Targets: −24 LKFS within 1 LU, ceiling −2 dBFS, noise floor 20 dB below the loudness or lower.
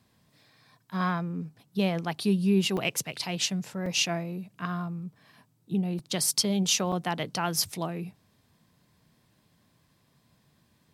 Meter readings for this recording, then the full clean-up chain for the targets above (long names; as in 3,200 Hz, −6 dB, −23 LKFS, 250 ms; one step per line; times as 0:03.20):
number of dropouts 4; longest dropout 3.4 ms; integrated loudness −28.5 LKFS; sample peak −12.0 dBFS; target loudness −24.0 LKFS
→ repair the gap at 0:02.77/0:03.86/0:05.99/0:06.92, 3.4 ms
level +4.5 dB